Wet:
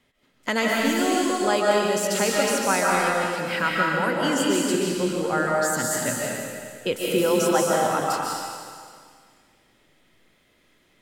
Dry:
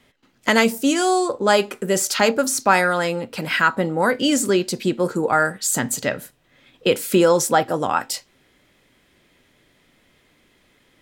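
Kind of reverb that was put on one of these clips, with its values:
comb and all-pass reverb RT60 2 s, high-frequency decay 1×, pre-delay 105 ms, DRR −3.5 dB
level −8 dB

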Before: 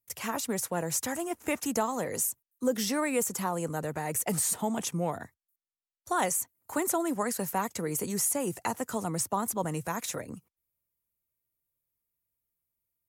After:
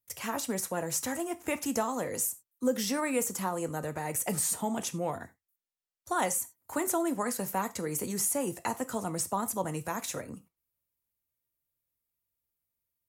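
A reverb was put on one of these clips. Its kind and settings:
reverb whose tail is shaped and stops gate 120 ms falling, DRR 10.5 dB
level −1.5 dB

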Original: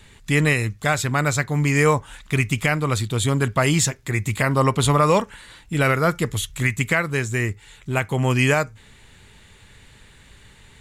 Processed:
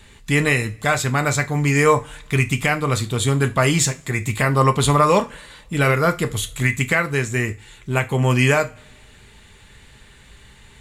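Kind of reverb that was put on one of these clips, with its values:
coupled-rooms reverb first 0.26 s, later 1.5 s, from −26 dB, DRR 7 dB
level +1 dB

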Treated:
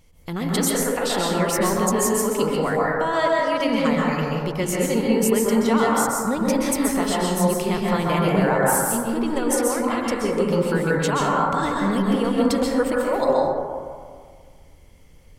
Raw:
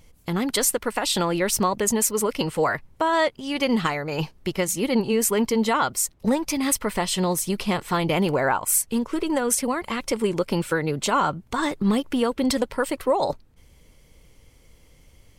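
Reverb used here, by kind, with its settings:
dense smooth reverb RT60 1.9 s, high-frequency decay 0.25×, pre-delay 115 ms, DRR −4 dB
level −3.5 dB

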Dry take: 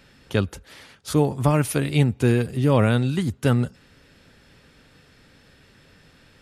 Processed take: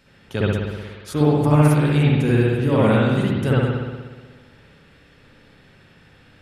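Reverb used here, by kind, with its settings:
spring reverb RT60 1.4 s, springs 60 ms, chirp 45 ms, DRR −7 dB
level −4.5 dB

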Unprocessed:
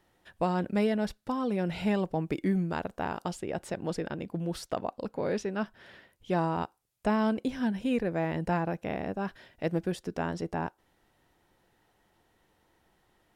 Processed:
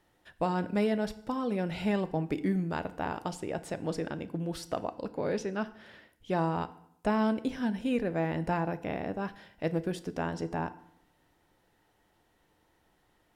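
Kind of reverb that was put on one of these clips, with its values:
feedback delay network reverb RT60 0.72 s, low-frequency decay 1.2×, high-frequency decay 0.85×, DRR 12 dB
level −1 dB

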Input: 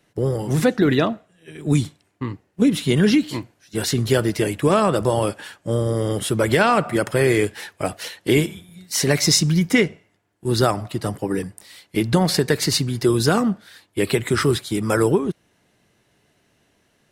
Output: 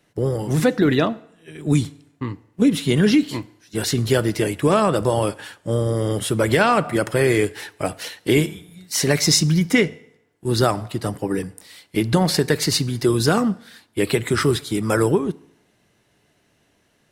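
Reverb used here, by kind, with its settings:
feedback delay network reverb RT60 0.8 s, low-frequency decay 0.9×, high-frequency decay 0.9×, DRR 19.5 dB

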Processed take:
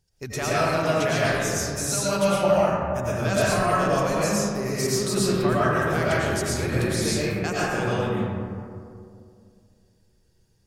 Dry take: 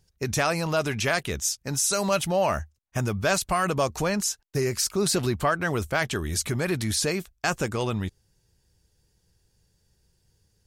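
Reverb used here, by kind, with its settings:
comb and all-pass reverb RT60 2.4 s, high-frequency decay 0.35×, pre-delay 70 ms, DRR −8.5 dB
level −6.5 dB

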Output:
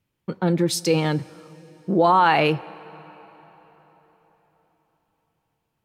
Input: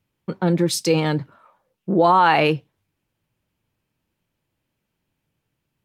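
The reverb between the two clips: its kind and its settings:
dense smooth reverb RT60 4.4 s, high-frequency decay 0.75×, DRR 20 dB
level −1.5 dB

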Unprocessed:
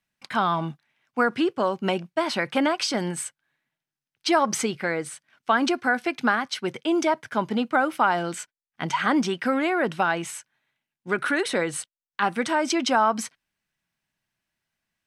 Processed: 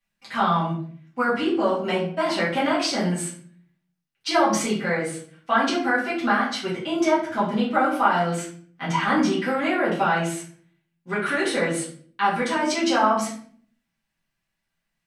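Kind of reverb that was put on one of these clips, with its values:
rectangular room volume 61 cubic metres, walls mixed, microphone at 2 metres
level −8 dB

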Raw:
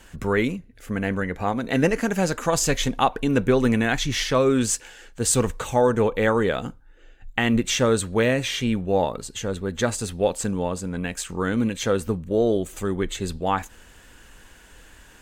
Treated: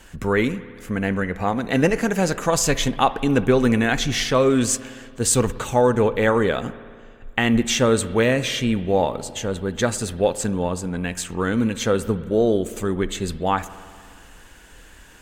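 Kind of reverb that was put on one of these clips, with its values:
spring reverb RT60 2.1 s, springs 56 ms, chirp 75 ms, DRR 15 dB
level +2 dB

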